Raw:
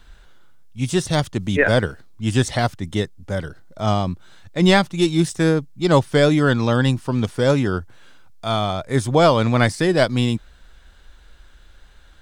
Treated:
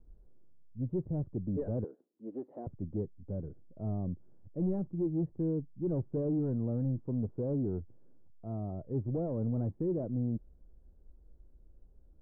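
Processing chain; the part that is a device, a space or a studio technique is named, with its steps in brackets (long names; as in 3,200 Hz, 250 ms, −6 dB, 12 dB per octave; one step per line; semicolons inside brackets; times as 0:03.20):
overdriven synthesiser ladder filter (soft clipping −18 dBFS, distortion −9 dB; transistor ladder low-pass 550 Hz, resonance 20%)
0:01.84–0:02.67: high-pass filter 290 Hz 24 dB per octave
level −4.5 dB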